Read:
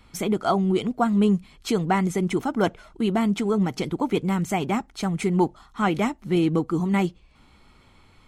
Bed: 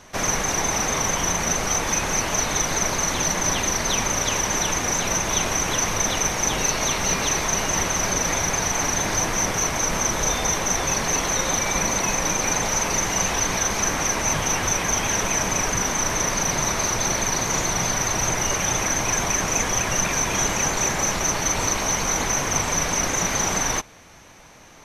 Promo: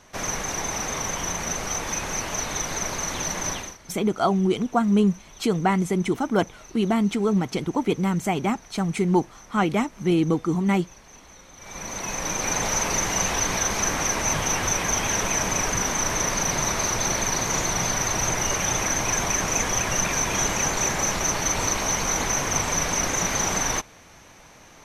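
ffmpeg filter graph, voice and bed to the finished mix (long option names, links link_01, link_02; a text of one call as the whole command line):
ffmpeg -i stem1.wav -i stem2.wav -filter_complex "[0:a]adelay=3750,volume=0.5dB[link_01];[1:a]volume=19.5dB,afade=type=out:start_time=3.48:duration=0.29:silence=0.0891251,afade=type=in:start_time=11.56:duration=1.11:silence=0.0562341[link_02];[link_01][link_02]amix=inputs=2:normalize=0" out.wav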